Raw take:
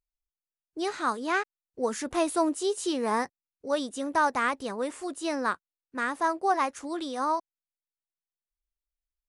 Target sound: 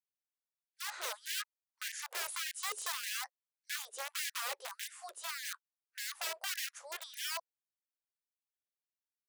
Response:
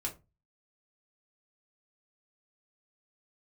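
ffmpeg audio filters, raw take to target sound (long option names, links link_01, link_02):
-af "aeval=exprs='(mod(17.8*val(0)+1,2)-1)/17.8':channel_layout=same,afftfilt=real='re*gte(b*sr/1024,350*pow(1600/350,0.5+0.5*sin(2*PI*1.7*pts/sr)))':imag='im*gte(b*sr/1024,350*pow(1600/350,0.5+0.5*sin(2*PI*1.7*pts/sr)))':win_size=1024:overlap=0.75,volume=-7dB"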